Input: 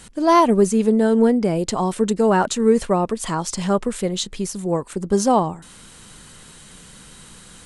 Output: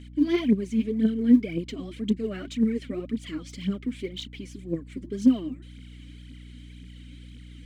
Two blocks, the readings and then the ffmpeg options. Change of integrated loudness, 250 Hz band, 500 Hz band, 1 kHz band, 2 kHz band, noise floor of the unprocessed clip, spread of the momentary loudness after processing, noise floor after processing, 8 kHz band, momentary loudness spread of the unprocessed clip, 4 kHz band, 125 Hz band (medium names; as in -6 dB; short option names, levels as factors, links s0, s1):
-7.5 dB, -4.0 dB, -15.0 dB, -29.5 dB, -10.5 dB, -45 dBFS, 24 LU, -45 dBFS, -21.5 dB, 9 LU, -9.0 dB, -8.5 dB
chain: -filter_complex "[0:a]asplit=3[s0][s1][s2];[s0]bandpass=f=270:t=q:w=8,volume=1[s3];[s1]bandpass=f=2290:t=q:w=8,volume=0.501[s4];[s2]bandpass=f=3010:t=q:w=8,volume=0.355[s5];[s3][s4][s5]amix=inputs=3:normalize=0,aphaser=in_gain=1:out_gain=1:delay=4.2:decay=0.7:speed=1.9:type=triangular,aeval=exprs='val(0)+0.00562*(sin(2*PI*60*n/s)+sin(2*PI*2*60*n/s)/2+sin(2*PI*3*60*n/s)/3+sin(2*PI*4*60*n/s)/4+sin(2*PI*5*60*n/s)/5)':c=same,volume=1.26"